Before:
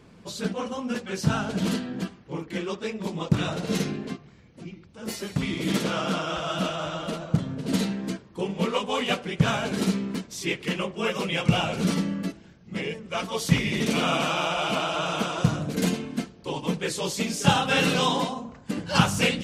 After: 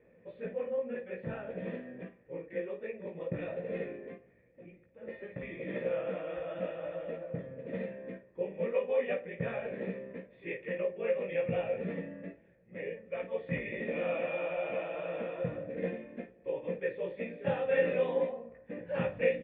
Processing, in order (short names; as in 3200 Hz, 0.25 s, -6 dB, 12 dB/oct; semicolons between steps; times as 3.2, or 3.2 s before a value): vocal tract filter e; early reflections 17 ms -4 dB, 53 ms -12 dB; gain +1.5 dB